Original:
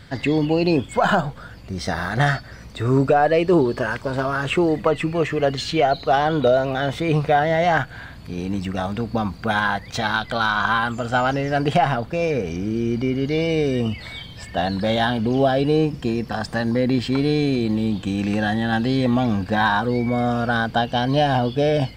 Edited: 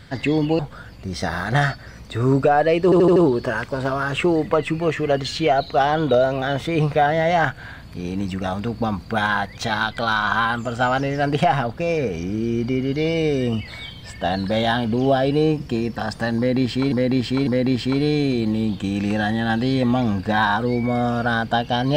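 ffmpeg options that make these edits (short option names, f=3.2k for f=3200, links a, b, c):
-filter_complex "[0:a]asplit=8[a][b][c][d][e][f][g][h];[a]atrim=end=0.592[i];[b]atrim=start=1.238:end=3.572[j];[c]atrim=start=3.488:end=3.572[k];[d]atrim=start=3.488:end=3.572[l];[e]atrim=start=3.488:end=3.572[m];[f]atrim=start=3.488:end=17.252[n];[g]atrim=start=16.698:end=17.252[o];[h]atrim=start=16.698[p];[i][j]acrossfade=d=0.004:c1=hsin:c2=hsin[q];[q][k]acrossfade=d=0.004:c1=hsin:c2=hsin[r];[r][l]acrossfade=d=0.004:c1=hsin:c2=hsin[s];[s][m]acrossfade=d=0.004:c1=hsin:c2=hsin[t];[t][n]acrossfade=d=0.004:c1=hsin:c2=hsin[u];[u][o]acrossfade=d=0.004:c1=hsin:c2=hsin[v];[v][p]acrossfade=d=0.004:c1=hsin:c2=hsin"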